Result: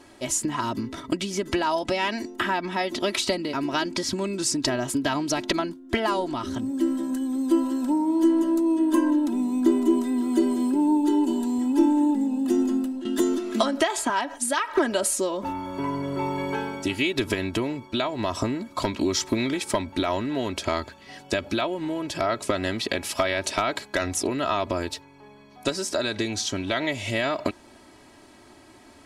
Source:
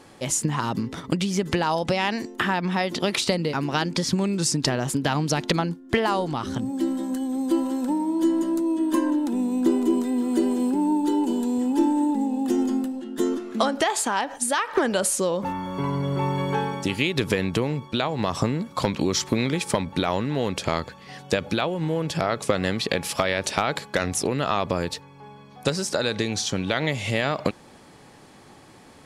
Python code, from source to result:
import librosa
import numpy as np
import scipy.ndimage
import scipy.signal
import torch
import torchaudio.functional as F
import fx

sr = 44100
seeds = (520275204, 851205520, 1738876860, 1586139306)

y = x + 0.74 * np.pad(x, (int(3.1 * sr / 1000.0), 0))[:len(x)]
y = fx.band_squash(y, sr, depth_pct=70, at=(13.05, 14.1))
y = y * librosa.db_to_amplitude(-3.0)